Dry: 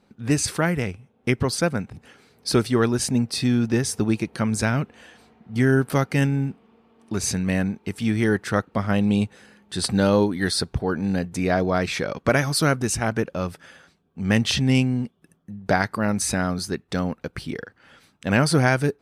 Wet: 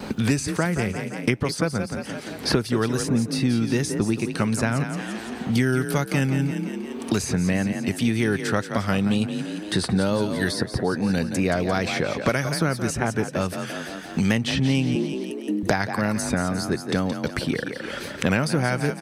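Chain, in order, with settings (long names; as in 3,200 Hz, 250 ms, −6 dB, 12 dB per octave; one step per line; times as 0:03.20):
tape wow and flutter 69 cents
0:14.95–0:15.63: frequency shifter +110 Hz
on a send: echo with shifted repeats 172 ms, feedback 38%, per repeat +34 Hz, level −10.5 dB
on the sum: multiband upward and downward compressor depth 100%
level −2 dB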